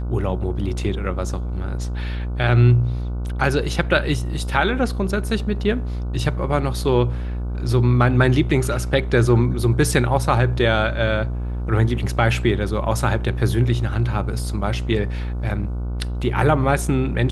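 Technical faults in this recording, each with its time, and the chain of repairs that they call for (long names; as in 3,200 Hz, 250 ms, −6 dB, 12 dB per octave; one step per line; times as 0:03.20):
mains buzz 60 Hz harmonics 25 −25 dBFS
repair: hum removal 60 Hz, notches 25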